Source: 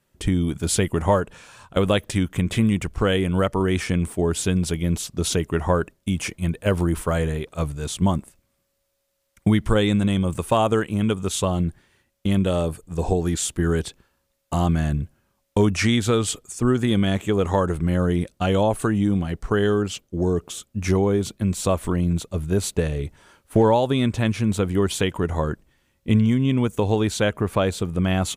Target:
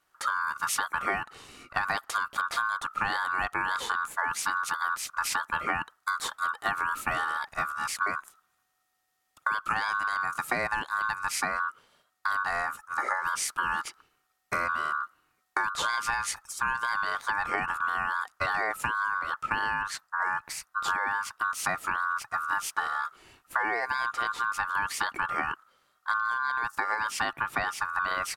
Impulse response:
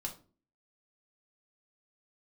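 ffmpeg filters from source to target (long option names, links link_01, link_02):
-af "aeval=exprs='val(0)*sin(2*PI*1300*n/s)':channel_layout=same,acompressor=threshold=-25dB:ratio=6"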